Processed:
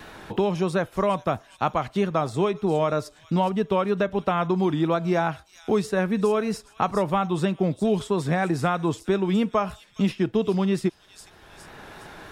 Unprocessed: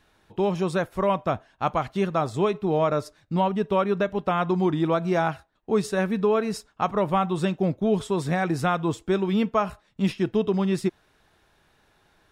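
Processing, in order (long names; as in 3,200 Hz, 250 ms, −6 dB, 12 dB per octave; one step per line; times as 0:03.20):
delay with a high-pass on its return 411 ms, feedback 30%, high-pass 5,200 Hz, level −8 dB
pitch vibrato 3.1 Hz 39 cents
multiband upward and downward compressor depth 70%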